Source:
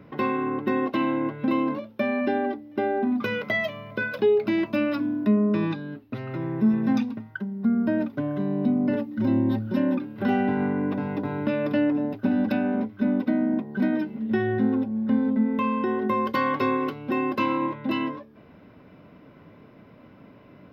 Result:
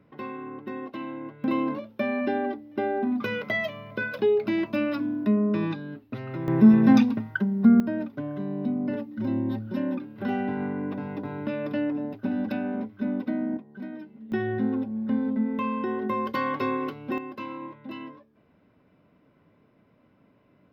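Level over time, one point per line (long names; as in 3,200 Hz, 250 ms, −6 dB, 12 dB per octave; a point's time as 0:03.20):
−11 dB
from 0:01.44 −2 dB
from 0:06.48 +6 dB
from 0:07.80 −5 dB
from 0:13.57 −14 dB
from 0:14.32 −3.5 dB
from 0:17.18 −12 dB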